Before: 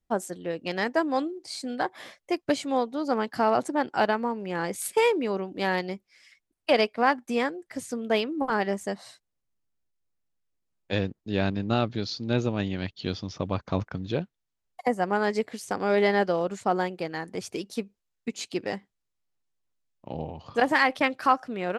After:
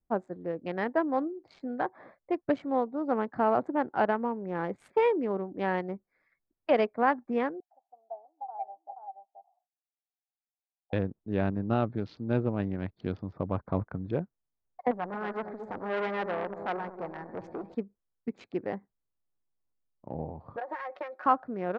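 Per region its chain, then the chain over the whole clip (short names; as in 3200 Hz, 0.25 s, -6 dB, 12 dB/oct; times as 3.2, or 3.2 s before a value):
7.6–10.93 Butterworth band-pass 760 Hz, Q 6.6 + echo 0.479 s -5.5 dB
14.91–17.75 G.711 law mismatch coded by mu + split-band echo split 1100 Hz, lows 0.227 s, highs 96 ms, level -12 dB + core saturation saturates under 3300 Hz
20.56–21.26 HPF 410 Hz 24 dB/oct + comb 5.5 ms, depth 87% + compressor 20:1, threshold -28 dBFS
whole clip: Wiener smoothing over 15 samples; LPF 1800 Hz 12 dB/oct; gain -2 dB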